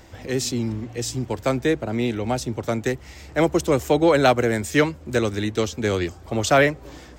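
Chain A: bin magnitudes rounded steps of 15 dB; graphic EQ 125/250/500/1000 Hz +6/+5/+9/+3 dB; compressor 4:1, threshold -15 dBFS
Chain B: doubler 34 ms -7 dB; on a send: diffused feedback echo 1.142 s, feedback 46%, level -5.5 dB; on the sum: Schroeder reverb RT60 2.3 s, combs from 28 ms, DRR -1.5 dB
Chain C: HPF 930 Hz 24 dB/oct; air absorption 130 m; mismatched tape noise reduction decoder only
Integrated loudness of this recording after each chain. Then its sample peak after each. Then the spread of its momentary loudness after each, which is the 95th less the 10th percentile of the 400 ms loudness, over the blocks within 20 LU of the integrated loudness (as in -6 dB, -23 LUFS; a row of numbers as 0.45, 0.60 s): -21.0, -17.0, -31.0 LUFS; -5.0, -1.0, -9.5 dBFS; 5, 10, 14 LU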